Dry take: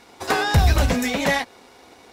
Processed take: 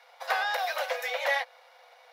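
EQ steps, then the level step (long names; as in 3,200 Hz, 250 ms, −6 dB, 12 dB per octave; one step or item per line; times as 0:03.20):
Chebyshev high-pass with heavy ripple 490 Hz, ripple 3 dB
parametric band 7,900 Hz −13 dB 0.78 octaves
notch filter 2,600 Hz, Q 22
−4.0 dB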